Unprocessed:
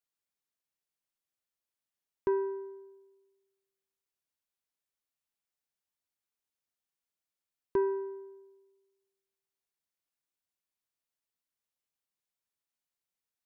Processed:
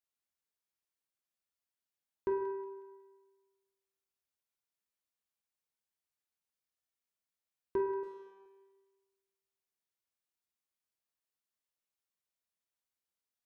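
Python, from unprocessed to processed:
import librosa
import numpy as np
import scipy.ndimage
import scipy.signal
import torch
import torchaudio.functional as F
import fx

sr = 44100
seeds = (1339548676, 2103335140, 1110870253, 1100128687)

y = fx.tube_stage(x, sr, drive_db=59.0, bias=0.65, at=(8.03, 8.46))
y = fx.echo_wet_highpass(y, sr, ms=183, feedback_pct=39, hz=1500.0, wet_db=-11.0)
y = fx.rev_fdn(y, sr, rt60_s=1.2, lf_ratio=0.7, hf_ratio=0.75, size_ms=86.0, drr_db=2.0)
y = y * librosa.db_to_amplitude(-5.0)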